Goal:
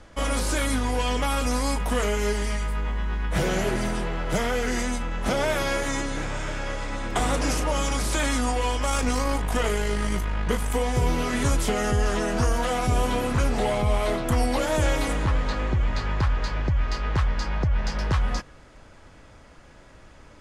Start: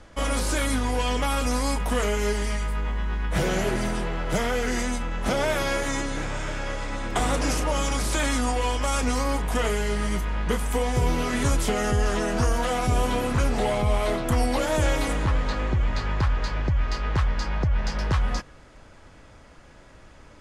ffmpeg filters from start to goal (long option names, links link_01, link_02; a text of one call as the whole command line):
ffmpeg -i in.wav -filter_complex "[0:a]asettb=1/sr,asplit=3[link_01][link_02][link_03];[link_01]atrim=end=8.894[link_04];[link_02]atrim=start=8.89:end=10.74,asetpts=PTS-STARTPTS,afade=type=in:duration=0.004:curve=qsin,afade=type=out:start_time=1.846:duration=0.004:curve=qsin,aeval=exprs='0.251*(cos(1*acos(clip(val(0)/0.251,-1,1)))-cos(1*PI/2))+0.0126*(cos(4*acos(clip(val(0)/0.251,-1,1)))-cos(4*PI/2))+0.00447*(cos(8*acos(clip(val(0)/0.251,-1,1)))-cos(8*PI/2))':channel_layout=same[link_05];[link_03]atrim=start=10.736[link_06];[link_04][link_05]acrossfade=duration=0.004:curve1=hsin:curve2=qsin[link_07];[link_07][link_06]acrossfade=duration=0.004:curve1=qsin:curve2=hsin" out.wav